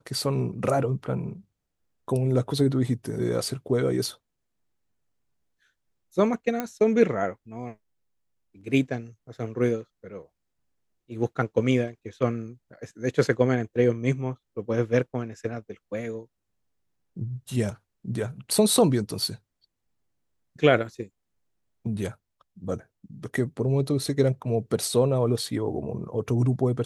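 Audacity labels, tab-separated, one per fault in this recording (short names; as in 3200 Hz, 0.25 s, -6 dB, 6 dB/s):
6.600000	6.600000	pop -14 dBFS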